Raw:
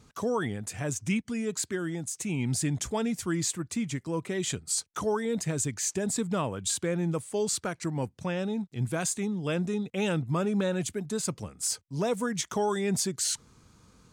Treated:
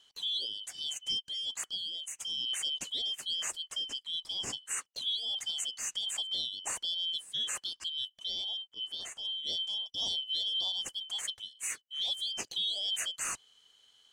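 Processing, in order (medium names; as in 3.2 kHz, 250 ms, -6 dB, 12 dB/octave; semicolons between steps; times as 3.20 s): four frequency bands reordered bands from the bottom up 3412; 8.57–9.25 s: low-pass 2.6 kHz 6 dB/octave; trim -6 dB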